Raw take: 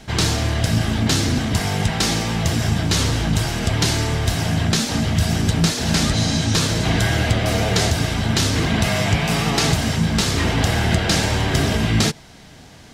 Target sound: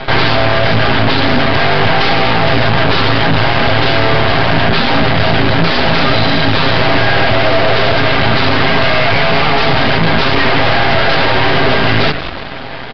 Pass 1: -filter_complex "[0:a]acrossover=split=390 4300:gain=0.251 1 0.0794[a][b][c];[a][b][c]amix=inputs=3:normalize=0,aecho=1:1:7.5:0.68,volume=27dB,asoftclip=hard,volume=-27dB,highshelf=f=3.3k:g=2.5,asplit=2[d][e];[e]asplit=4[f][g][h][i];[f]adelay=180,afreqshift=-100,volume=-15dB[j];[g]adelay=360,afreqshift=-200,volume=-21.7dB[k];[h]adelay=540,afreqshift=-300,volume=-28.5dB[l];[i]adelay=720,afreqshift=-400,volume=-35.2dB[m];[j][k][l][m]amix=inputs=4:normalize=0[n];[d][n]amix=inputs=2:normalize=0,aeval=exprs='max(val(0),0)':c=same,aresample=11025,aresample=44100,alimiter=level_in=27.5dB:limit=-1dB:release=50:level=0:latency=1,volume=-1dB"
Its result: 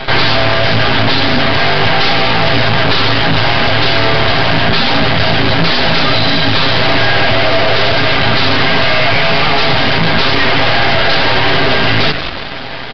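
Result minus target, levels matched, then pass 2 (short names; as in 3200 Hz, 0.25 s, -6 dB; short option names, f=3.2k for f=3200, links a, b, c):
8000 Hz band +3.5 dB
-filter_complex "[0:a]acrossover=split=390 4300:gain=0.251 1 0.0794[a][b][c];[a][b][c]amix=inputs=3:normalize=0,aecho=1:1:7.5:0.68,volume=27dB,asoftclip=hard,volume=-27dB,highshelf=f=3.3k:g=-8,asplit=2[d][e];[e]asplit=4[f][g][h][i];[f]adelay=180,afreqshift=-100,volume=-15dB[j];[g]adelay=360,afreqshift=-200,volume=-21.7dB[k];[h]adelay=540,afreqshift=-300,volume=-28.5dB[l];[i]adelay=720,afreqshift=-400,volume=-35.2dB[m];[j][k][l][m]amix=inputs=4:normalize=0[n];[d][n]amix=inputs=2:normalize=0,aeval=exprs='max(val(0),0)':c=same,aresample=11025,aresample=44100,alimiter=level_in=27.5dB:limit=-1dB:release=50:level=0:latency=1,volume=-1dB"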